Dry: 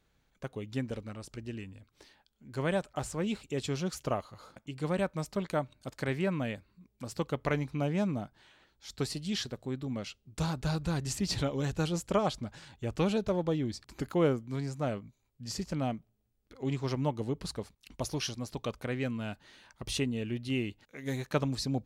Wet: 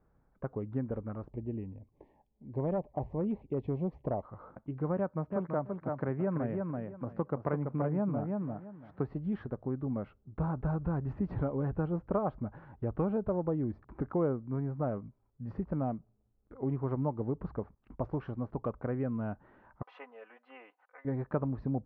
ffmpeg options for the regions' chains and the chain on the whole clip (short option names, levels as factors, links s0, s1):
-filter_complex "[0:a]asettb=1/sr,asplit=3[s0][s1][s2];[s0]atrim=end=1.304[s3];[s1]atrim=start=1.3:end=4.23,asetpts=PTS-STARTPTS,afade=t=in:d=0.004:c=qsin,afade=t=out:st=2.926:d=0.004:c=qsin,asuperstop=centerf=1400:order=4:qfactor=1.2,volume=21.1,asoftclip=hard,volume=0.0473[s4];[s2]atrim=start=4.226[s5];[s3][s4]acrossfade=d=0.004:c1=hsin:c2=qsin[s6];[s6][s5]acrossfade=d=0.004:c1=qsin:c2=hsin,asettb=1/sr,asplit=3[s7][s8][s9];[s7]atrim=end=4.974[s10];[s8]atrim=start=4.97:end=9.08,asetpts=PTS-STARTPTS,afade=t=in:d=0.004:c=qsin,afade=t=out:st=4.106:d=0.004:c=qsin,highpass=f=82:w=0.5412,highpass=f=82:w=1.3066,aecho=1:1:333|666|999:0.501|0.0852|0.0145,atrim=end_sample=181251[s11];[s9]atrim=start=9.076[s12];[s10][s11]acrossfade=d=0.004:c1=hsin:c2=qsin[s13];[s13][s12]acrossfade=d=0.004:c1=qsin:c2=hsin,asettb=1/sr,asplit=3[s14][s15][s16];[s14]atrim=end=19.824[s17];[s15]atrim=start=19.82:end=21.05,asetpts=PTS-STARTPTS,afade=t=in:d=0.004:c=qsin,afade=t=out:st=1.226:d=0.004:c=qsin,highpass=f=750:w=0.5412,highpass=f=750:w=1.3066,bandreject=f=3600:w=27,aecho=1:1:4:0.97,atrim=end_sample=54243[s18];[s16]atrim=start=21.046[s19];[s17][s18]acrossfade=d=0.004:c1=hsin:c2=qsin[s20];[s20][s19]acrossfade=d=0.004:c1=qsin:c2=hsin,lowpass=f=1300:w=0.5412,lowpass=f=1300:w=1.3066,acompressor=threshold=0.0178:ratio=2,volume=1.5"